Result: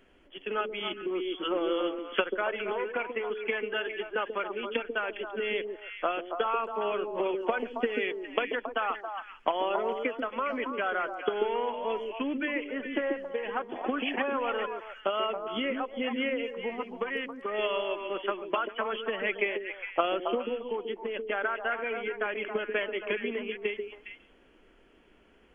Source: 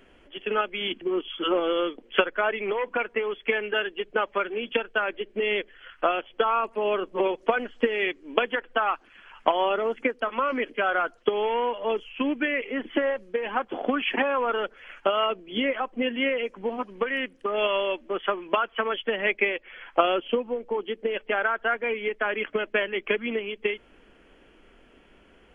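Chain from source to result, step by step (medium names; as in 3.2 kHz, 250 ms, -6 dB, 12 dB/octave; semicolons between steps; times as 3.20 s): repeats whose band climbs or falls 137 ms, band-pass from 320 Hz, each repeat 1.4 oct, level -1.5 dB; trim -6 dB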